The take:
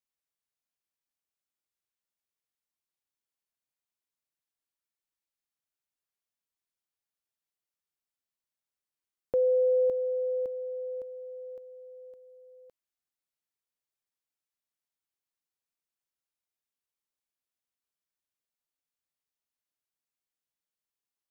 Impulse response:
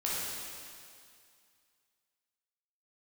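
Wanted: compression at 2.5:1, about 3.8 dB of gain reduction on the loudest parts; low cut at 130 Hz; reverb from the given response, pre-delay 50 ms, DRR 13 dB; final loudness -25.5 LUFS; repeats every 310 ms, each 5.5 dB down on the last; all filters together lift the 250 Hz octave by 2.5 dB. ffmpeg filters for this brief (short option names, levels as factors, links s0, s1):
-filter_complex "[0:a]highpass=130,equalizer=f=250:t=o:g=4,acompressor=threshold=0.0447:ratio=2.5,aecho=1:1:310|620|930|1240|1550|1860|2170:0.531|0.281|0.149|0.079|0.0419|0.0222|0.0118,asplit=2[s0][s1];[1:a]atrim=start_sample=2205,adelay=50[s2];[s1][s2]afir=irnorm=-1:irlink=0,volume=0.1[s3];[s0][s3]amix=inputs=2:normalize=0,volume=2.37"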